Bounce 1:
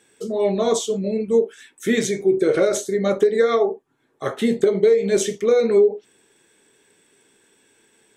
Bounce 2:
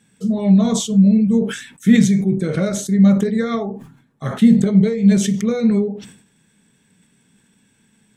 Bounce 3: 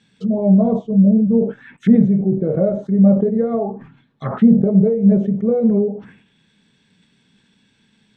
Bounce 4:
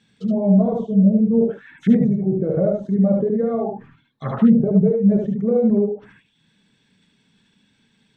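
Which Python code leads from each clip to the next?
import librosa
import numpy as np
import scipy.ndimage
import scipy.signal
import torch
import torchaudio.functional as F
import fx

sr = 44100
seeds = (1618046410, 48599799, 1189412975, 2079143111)

y1 = fx.low_shelf_res(x, sr, hz=270.0, db=11.0, q=3.0)
y1 = fx.sustainer(y1, sr, db_per_s=93.0)
y1 = y1 * librosa.db_to_amplitude(-2.5)
y2 = fx.envelope_lowpass(y1, sr, base_hz=620.0, top_hz=4300.0, q=2.4, full_db=-17.5, direction='down')
y2 = y2 * librosa.db_to_amplitude(-1.0)
y3 = fx.dereverb_blind(y2, sr, rt60_s=0.57)
y3 = y3 + 10.0 ** (-3.0 / 20.0) * np.pad(y3, (int(74 * sr / 1000.0), 0))[:len(y3)]
y3 = y3 * librosa.db_to_amplitude(-2.5)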